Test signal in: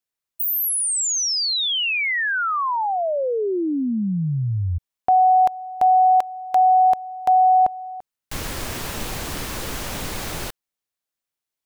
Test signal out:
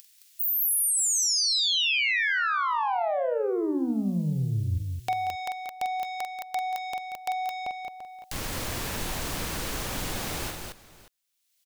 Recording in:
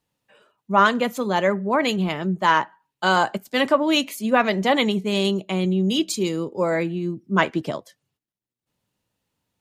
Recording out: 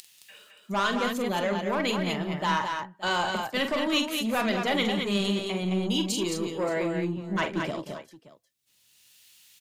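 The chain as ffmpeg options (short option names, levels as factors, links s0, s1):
-filter_complex "[0:a]acrossover=split=2200[s0][s1];[s0]asoftclip=type=tanh:threshold=0.106[s2];[s1]acompressor=mode=upward:threshold=0.0126:ratio=4:attack=10:release=997:knee=2.83:detection=peak[s3];[s2][s3]amix=inputs=2:normalize=0,aecho=1:1:45|184|217|575:0.422|0.224|0.562|0.112,volume=0.596"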